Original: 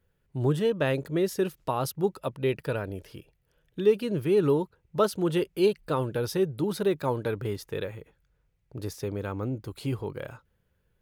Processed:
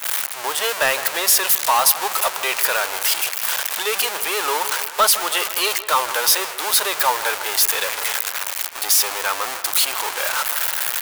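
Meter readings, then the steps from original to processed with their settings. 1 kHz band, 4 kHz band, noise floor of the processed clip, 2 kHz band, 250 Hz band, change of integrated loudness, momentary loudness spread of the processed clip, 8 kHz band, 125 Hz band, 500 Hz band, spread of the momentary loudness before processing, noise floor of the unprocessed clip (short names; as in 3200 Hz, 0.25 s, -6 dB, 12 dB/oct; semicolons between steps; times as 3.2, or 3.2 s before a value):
+15.0 dB, +21.5 dB, -31 dBFS, +18.5 dB, -12.5 dB, +10.0 dB, 7 LU, +27.0 dB, under -20 dB, -1.5 dB, 13 LU, -72 dBFS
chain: zero-crossing step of -28 dBFS; HPF 770 Hz 24 dB/oct; gate -43 dBFS, range -15 dB; high shelf 6200 Hz +10 dB; sample leveller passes 2; on a send: dark delay 0.159 s, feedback 60%, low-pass 3200 Hz, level -14 dB; on the sum: gain +6 dB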